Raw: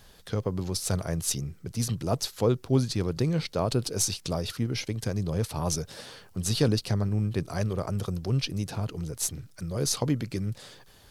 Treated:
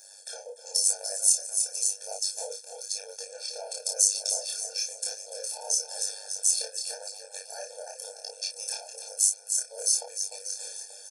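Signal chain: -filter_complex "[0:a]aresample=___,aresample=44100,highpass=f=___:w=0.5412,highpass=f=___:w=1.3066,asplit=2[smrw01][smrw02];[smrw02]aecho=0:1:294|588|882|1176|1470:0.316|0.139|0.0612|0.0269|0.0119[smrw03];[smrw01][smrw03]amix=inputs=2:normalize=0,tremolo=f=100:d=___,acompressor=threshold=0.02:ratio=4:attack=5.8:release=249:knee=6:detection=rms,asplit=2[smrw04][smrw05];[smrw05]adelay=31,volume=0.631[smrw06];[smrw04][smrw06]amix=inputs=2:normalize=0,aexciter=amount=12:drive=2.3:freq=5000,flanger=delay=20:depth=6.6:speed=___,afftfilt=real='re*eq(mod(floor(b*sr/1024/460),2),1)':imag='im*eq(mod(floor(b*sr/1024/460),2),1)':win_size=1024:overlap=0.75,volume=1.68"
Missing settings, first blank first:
22050, 190, 190, 0.919, 0.97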